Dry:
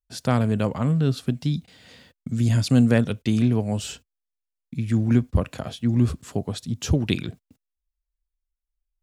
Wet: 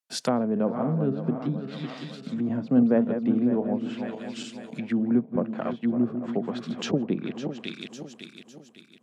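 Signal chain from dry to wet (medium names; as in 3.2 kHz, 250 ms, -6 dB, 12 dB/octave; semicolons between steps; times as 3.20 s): backward echo that repeats 277 ms, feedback 63%, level -8 dB; low-pass that closes with the level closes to 710 Hz, closed at -19.5 dBFS; steep high-pass 160 Hz 36 dB/octave; bass shelf 440 Hz -8 dB; trim +4.5 dB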